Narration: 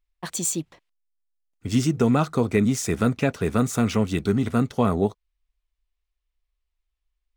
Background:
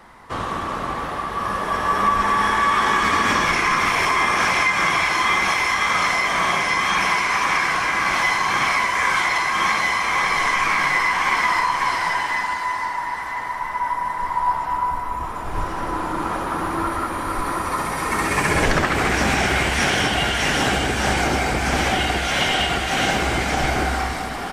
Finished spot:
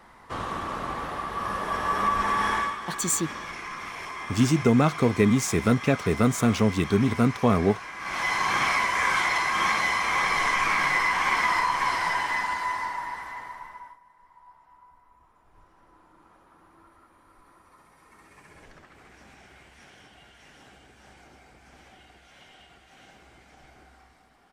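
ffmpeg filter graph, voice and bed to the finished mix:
-filter_complex "[0:a]adelay=2650,volume=0dB[a];[1:a]volume=7.5dB,afade=t=out:st=2.55:d=0.22:silence=0.251189,afade=t=in:st=7.98:d=0.45:silence=0.211349,afade=t=out:st=12.66:d=1.33:silence=0.0375837[b];[a][b]amix=inputs=2:normalize=0"

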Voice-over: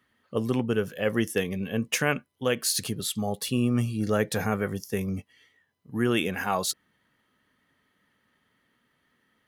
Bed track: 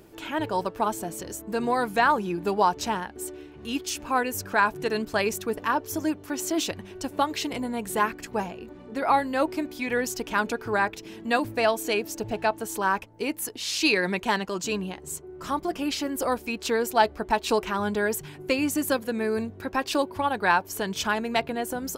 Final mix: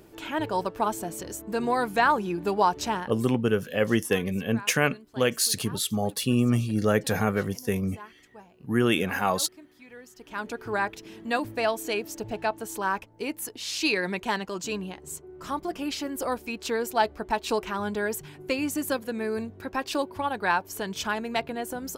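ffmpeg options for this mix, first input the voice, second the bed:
-filter_complex "[0:a]adelay=2750,volume=2dB[a];[1:a]volume=17dB,afade=t=out:st=2.99:d=0.31:silence=0.1,afade=t=in:st=10.15:d=0.54:silence=0.133352[b];[a][b]amix=inputs=2:normalize=0"

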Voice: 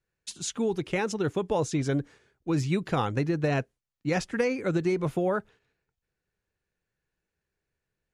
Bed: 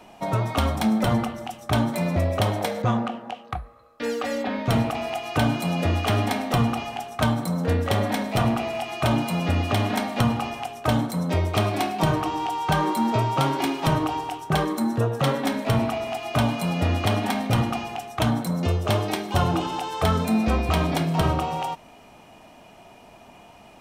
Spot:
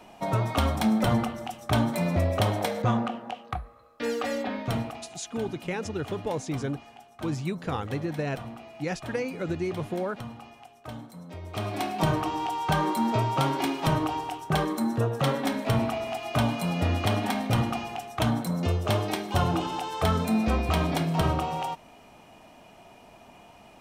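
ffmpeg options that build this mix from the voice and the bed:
-filter_complex "[0:a]adelay=4750,volume=-4dB[a];[1:a]volume=13dB,afade=t=out:st=4.27:d=0.85:silence=0.158489,afade=t=in:st=11.41:d=0.57:silence=0.177828[b];[a][b]amix=inputs=2:normalize=0"

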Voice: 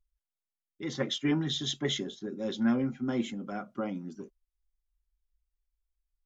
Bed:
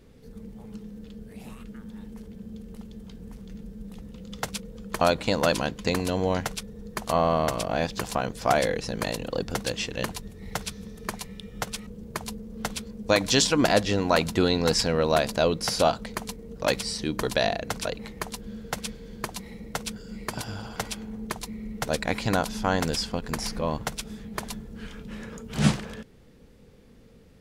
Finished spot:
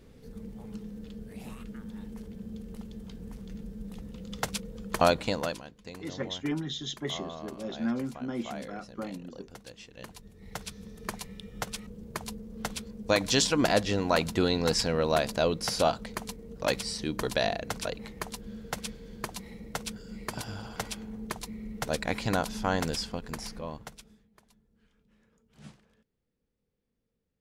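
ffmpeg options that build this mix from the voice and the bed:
-filter_complex "[0:a]adelay=5200,volume=-3.5dB[a];[1:a]volume=14.5dB,afade=t=out:st=5.04:d=0.58:silence=0.125893,afade=t=in:st=9.92:d=1.17:silence=0.177828,afade=t=out:st=22.78:d=1.5:silence=0.0562341[b];[a][b]amix=inputs=2:normalize=0"

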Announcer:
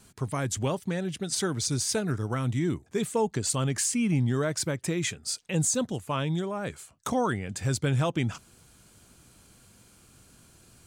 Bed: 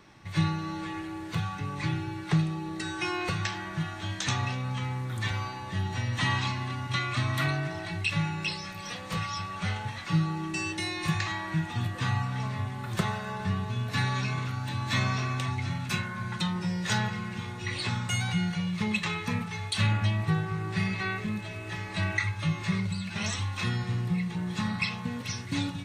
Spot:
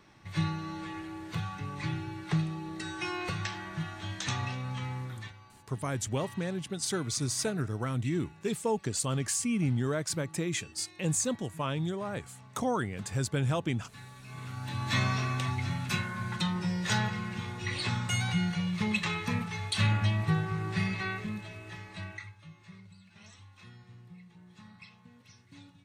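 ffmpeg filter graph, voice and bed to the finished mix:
-filter_complex "[0:a]adelay=5500,volume=-3.5dB[a];[1:a]volume=16dB,afade=t=out:st=5.03:d=0.3:silence=0.141254,afade=t=in:st=14.23:d=0.67:silence=0.1,afade=t=out:st=20.68:d=1.73:silence=0.0841395[b];[a][b]amix=inputs=2:normalize=0"

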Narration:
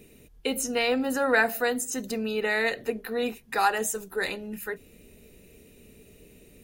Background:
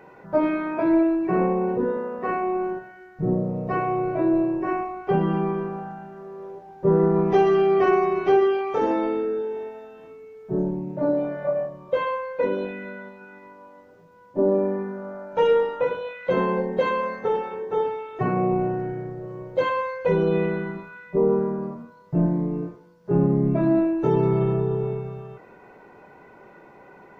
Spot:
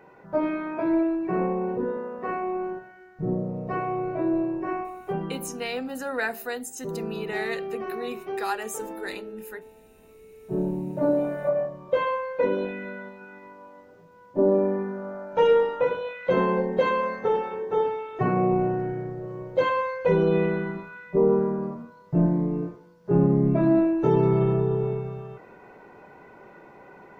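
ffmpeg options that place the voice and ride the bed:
-filter_complex "[0:a]adelay=4850,volume=-6dB[a];[1:a]volume=10.5dB,afade=t=out:st=4.82:d=0.6:silence=0.298538,afade=t=in:st=9.9:d=0.97:silence=0.188365[b];[a][b]amix=inputs=2:normalize=0"

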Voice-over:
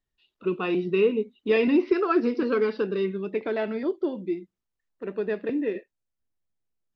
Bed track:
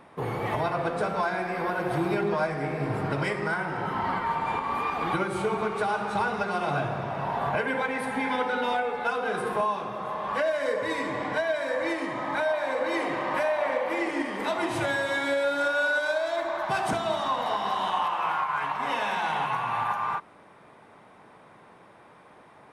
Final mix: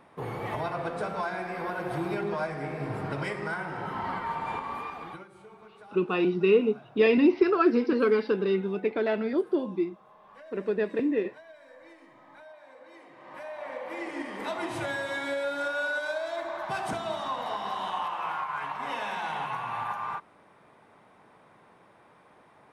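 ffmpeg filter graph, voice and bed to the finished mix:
-filter_complex "[0:a]adelay=5500,volume=0.5dB[a];[1:a]volume=14dB,afade=t=out:st=4.57:d=0.71:silence=0.112202,afade=t=in:st=13.15:d=1.28:silence=0.11885[b];[a][b]amix=inputs=2:normalize=0"

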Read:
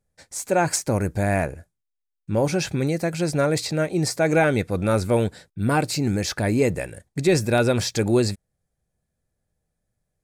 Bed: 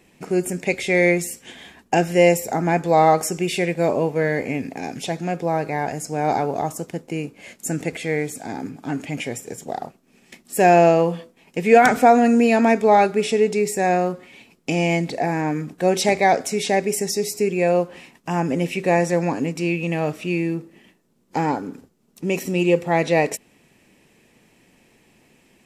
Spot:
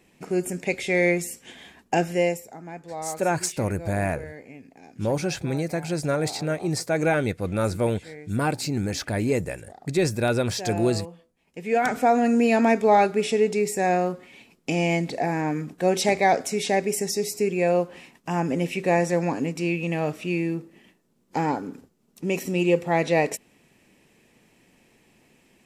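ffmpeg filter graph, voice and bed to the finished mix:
-filter_complex "[0:a]adelay=2700,volume=-3.5dB[a];[1:a]volume=12dB,afade=t=out:st=2.02:d=0.48:silence=0.177828,afade=t=in:st=11.35:d=1.19:silence=0.158489[b];[a][b]amix=inputs=2:normalize=0"

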